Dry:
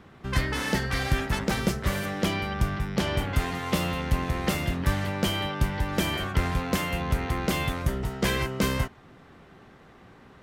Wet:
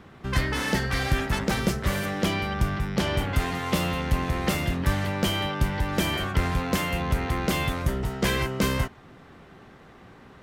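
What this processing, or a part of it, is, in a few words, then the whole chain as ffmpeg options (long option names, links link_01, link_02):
parallel distortion: -filter_complex "[0:a]asplit=2[link_01][link_02];[link_02]asoftclip=type=hard:threshold=-29dB,volume=-10dB[link_03];[link_01][link_03]amix=inputs=2:normalize=0"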